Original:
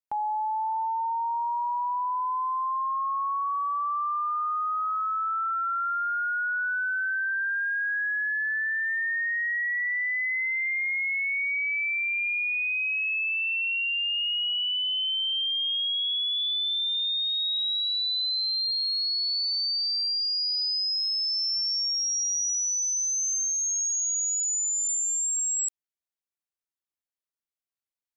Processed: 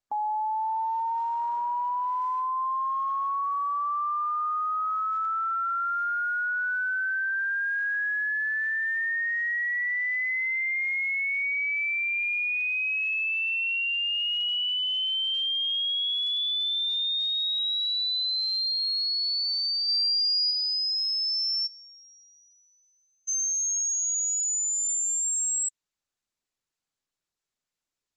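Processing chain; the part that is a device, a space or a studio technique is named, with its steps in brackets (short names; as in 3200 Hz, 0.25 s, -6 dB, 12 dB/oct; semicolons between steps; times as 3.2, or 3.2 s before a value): 19.88–20.51 high shelf 2200 Hz +3.5 dB; 21.66–23.27 LPF 3300 Hz -> 1800 Hz 24 dB/oct; dynamic EQ 260 Hz, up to +6 dB, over -57 dBFS, Q 1.4; noise-suppressed video call (HPF 180 Hz 6 dB/oct; spectral gate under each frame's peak -30 dB strong; Opus 12 kbps 48000 Hz)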